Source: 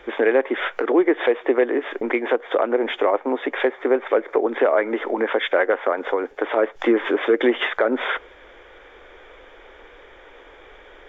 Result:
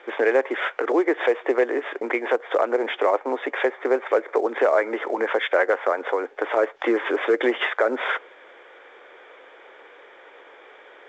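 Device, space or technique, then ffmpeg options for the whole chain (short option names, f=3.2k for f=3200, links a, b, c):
telephone: -af "highpass=390,lowpass=3.3k" -ar 16000 -c:a pcm_mulaw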